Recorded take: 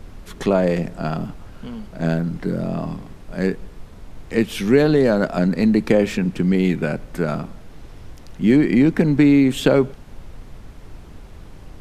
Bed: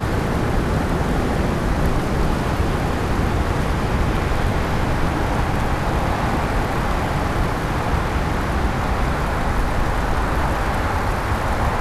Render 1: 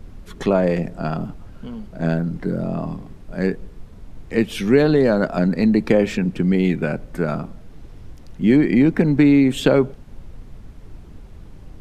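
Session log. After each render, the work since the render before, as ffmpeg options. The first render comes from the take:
ffmpeg -i in.wav -af "afftdn=noise_reduction=6:noise_floor=-41" out.wav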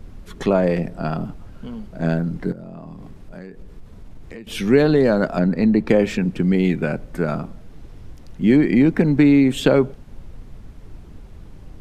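ffmpeg -i in.wav -filter_complex "[0:a]asettb=1/sr,asplit=3[link_01][link_02][link_03];[link_01]atrim=end=0.674[link_04];[link_02]atrim=start=0.67:end=1.26,asetpts=PTS-STARTPTS,afade=type=in:duration=0.004:curve=qsin,afade=type=out:start_time=0.586:duration=0.004:curve=qsin,bandreject=frequency=6900:width=8[link_05];[link_03]atrim=start=1.256[link_06];[link_04][link_05]acrossfade=duration=0.004:curve1=hsin:curve2=qsin[link_07];[link_07][link_06]acrossfade=duration=0.004:curve1=qsin:curve2=hsin,asettb=1/sr,asplit=3[link_08][link_09][link_10];[link_08]atrim=end=2.524[link_11];[link_09]atrim=start=2.52:end=4.47,asetpts=PTS-STARTPTS,afade=type=in:duration=0.004:curve=qsin,afade=type=out:start_time=1.946:duration=0.004:curve=qsin,acompressor=threshold=-32dB:ratio=12:attack=3.2:release=140:knee=1:detection=peak[link_12];[link_10]atrim=start=4.466[link_13];[link_11][link_12]acrossfade=duration=0.004:curve1=hsin:curve2=qsin[link_14];[link_14][link_13]acrossfade=duration=0.004:curve1=qsin:curve2=hsin,asettb=1/sr,asplit=3[link_15][link_16][link_17];[link_15]atrim=end=5.394[link_18];[link_16]atrim=start=5.39:end=5.89,asetpts=PTS-STARTPTS,afade=type=in:duration=0.004:curve=qsin,afade=type=out:start_time=0.496:duration=0.004:curve=qsin,highshelf=frequency=3900:gain=-9.5[link_19];[link_17]atrim=start=5.886[link_20];[link_18][link_19]acrossfade=duration=0.004:curve1=hsin:curve2=qsin[link_21];[link_21][link_20]acrossfade=duration=0.004:curve1=qsin:curve2=hsin" out.wav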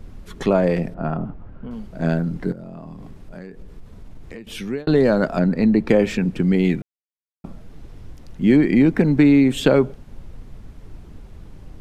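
ffmpeg -i in.wav -filter_complex "[0:a]asettb=1/sr,asplit=3[link_01][link_02][link_03];[link_01]atrim=end=0.944[link_04];[link_02]atrim=start=0.94:end=1.71,asetpts=PTS-STARTPTS,afade=type=in:duration=0.004:curve=qsin,afade=type=out:start_time=0.766:duration=0.004:curve=qsin,lowpass=1700[link_05];[link_03]atrim=start=1.706[link_06];[link_04][link_05]acrossfade=duration=0.004:curve1=hsin:curve2=qsin[link_07];[link_07][link_06]acrossfade=duration=0.004:curve1=qsin:curve2=hsin,asplit=4[link_08][link_09][link_10][link_11];[link_08]atrim=end=4.87,asetpts=PTS-STARTPTS,afade=type=out:start_time=4.37:duration=0.5[link_12];[link_09]atrim=start=4.87:end=6.82,asetpts=PTS-STARTPTS,afade=type=in:duration=0.004:curve=hsin,afade=type=out:start_time=1.946:duration=0.004:curve=hsin[link_13];[link_10]atrim=start=6.82:end=7.44,asetpts=PTS-STARTPTS,volume=0[link_14];[link_11]atrim=start=7.44,asetpts=PTS-STARTPTS,afade=type=in:duration=0.004:curve=hsin[link_15];[link_12][link_13][link_14][link_15]concat=n=4:v=0:a=1" out.wav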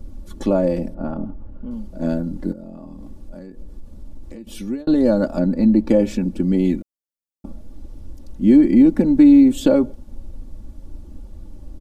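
ffmpeg -i in.wav -af "equalizer=frequency=2000:width=0.65:gain=-13.5,aecho=1:1:3.5:0.8" out.wav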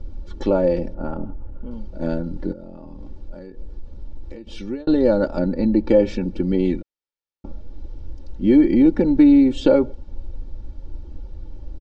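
ffmpeg -i in.wav -af "lowpass=frequency=5300:width=0.5412,lowpass=frequency=5300:width=1.3066,aecho=1:1:2.2:0.46" out.wav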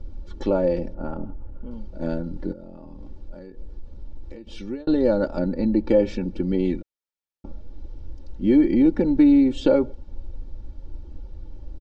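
ffmpeg -i in.wav -af "volume=-3dB" out.wav

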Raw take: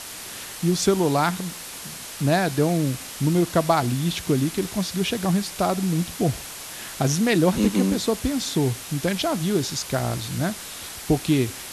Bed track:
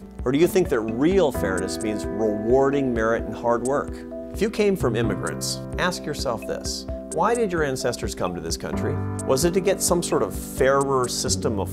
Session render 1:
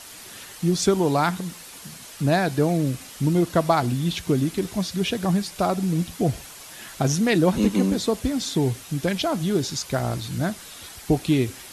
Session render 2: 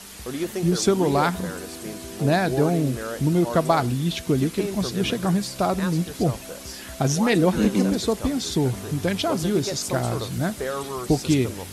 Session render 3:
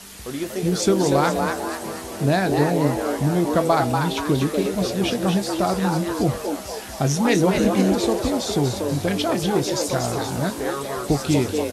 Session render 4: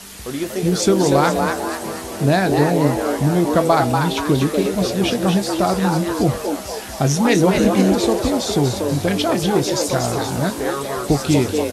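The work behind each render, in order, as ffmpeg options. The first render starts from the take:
ffmpeg -i in.wav -af "afftdn=noise_reduction=7:noise_floor=-37" out.wav
ffmpeg -i in.wav -i bed.wav -filter_complex "[1:a]volume=-10dB[link_01];[0:a][link_01]amix=inputs=2:normalize=0" out.wav
ffmpeg -i in.wav -filter_complex "[0:a]asplit=2[link_01][link_02];[link_02]adelay=21,volume=-11dB[link_03];[link_01][link_03]amix=inputs=2:normalize=0,asplit=6[link_04][link_05][link_06][link_07][link_08][link_09];[link_05]adelay=240,afreqshift=150,volume=-5.5dB[link_10];[link_06]adelay=480,afreqshift=300,volume=-12.4dB[link_11];[link_07]adelay=720,afreqshift=450,volume=-19.4dB[link_12];[link_08]adelay=960,afreqshift=600,volume=-26.3dB[link_13];[link_09]adelay=1200,afreqshift=750,volume=-33.2dB[link_14];[link_04][link_10][link_11][link_12][link_13][link_14]amix=inputs=6:normalize=0" out.wav
ffmpeg -i in.wav -af "volume=3.5dB,alimiter=limit=-3dB:level=0:latency=1" out.wav

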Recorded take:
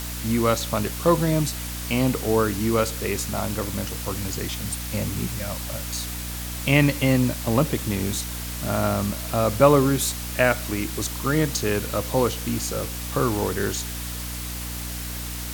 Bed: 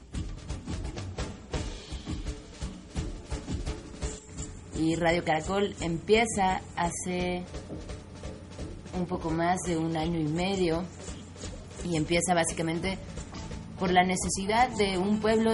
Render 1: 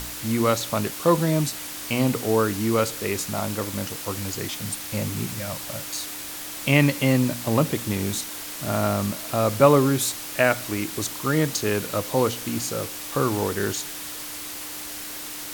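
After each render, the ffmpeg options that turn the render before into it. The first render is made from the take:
ffmpeg -i in.wav -af "bandreject=frequency=60:width_type=h:width=4,bandreject=frequency=120:width_type=h:width=4,bandreject=frequency=180:width_type=h:width=4,bandreject=frequency=240:width_type=h:width=4" out.wav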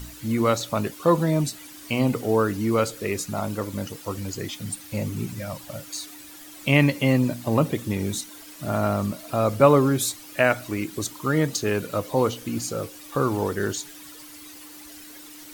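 ffmpeg -i in.wav -af "afftdn=noise_reduction=12:noise_floor=-35" out.wav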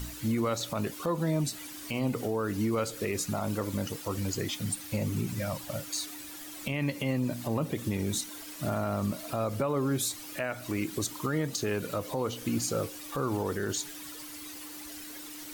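ffmpeg -i in.wav -af "acompressor=threshold=-25dB:ratio=4,alimiter=limit=-20.5dB:level=0:latency=1:release=37" out.wav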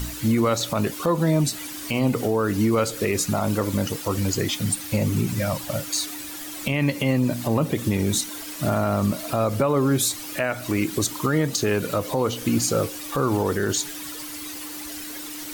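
ffmpeg -i in.wav -af "volume=8.5dB" out.wav

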